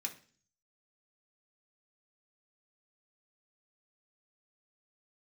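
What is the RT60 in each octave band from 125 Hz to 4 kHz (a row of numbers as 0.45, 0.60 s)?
0.75, 0.60, 0.45, 0.40, 0.45, 0.50 s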